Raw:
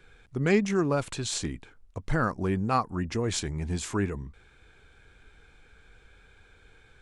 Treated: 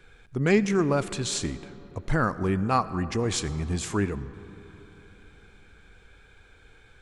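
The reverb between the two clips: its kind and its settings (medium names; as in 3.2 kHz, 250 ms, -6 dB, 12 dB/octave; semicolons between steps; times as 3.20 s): algorithmic reverb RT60 3.9 s, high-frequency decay 0.45×, pre-delay 35 ms, DRR 15 dB; trim +2 dB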